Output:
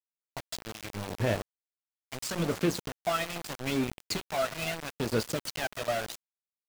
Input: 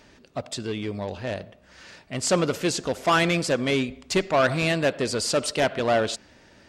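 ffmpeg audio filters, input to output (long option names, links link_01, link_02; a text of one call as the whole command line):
ffmpeg -i in.wav -filter_complex "[0:a]equalizer=frequency=560:width=0.86:gain=-2.5,bandreject=frequency=181.4:width_type=h:width=4,bandreject=frequency=362.8:width_type=h:width=4,bandreject=frequency=544.2:width_type=h:width=4,bandreject=frequency=725.6:width_type=h:width=4,bandreject=frequency=907:width_type=h:width=4,bandreject=frequency=1088.4:width_type=h:width=4,bandreject=frequency=1269.8:width_type=h:width=4,bandreject=frequency=1451.2:width_type=h:width=4,bandreject=frequency=1632.6:width_type=h:width=4,bandreject=frequency=1814:width_type=h:width=4,bandreject=frequency=1995.4:width_type=h:width=4,bandreject=frequency=2176.8:width_type=h:width=4,acompressor=threshold=-34dB:ratio=4,aphaser=in_gain=1:out_gain=1:delay=1.6:decay=0.67:speed=0.77:type=sinusoidal,adynamicsmooth=sensitivity=6.5:basefreq=5800,asplit=2[link_01][link_02];[link_02]adelay=18,volume=-10dB[link_03];[link_01][link_03]amix=inputs=2:normalize=0,asplit=6[link_04][link_05][link_06][link_07][link_08][link_09];[link_05]adelay=281,afreqshift=66,volume=-18.5dB[link_10];[link_06]adelay=562,afreqshift=132,volume=-23.4dB[link_11];[link_07]adelay=843,afreqshift=198,volume=-28.3dB[link_12];[link_08]adelay=1124,afreqshift=264,volume=-33.1dB[link_13];[link_09]adelay=1405,afreqshift=330,volume=-38dB[link_14];[link_04][link_10][link_11][link_12][link_13][link_14]amix=inputs=6:normalize=0,aeval=exprs='val(0)*gte(abs(val(0)),0.0282)':channel_layout=same" out.wav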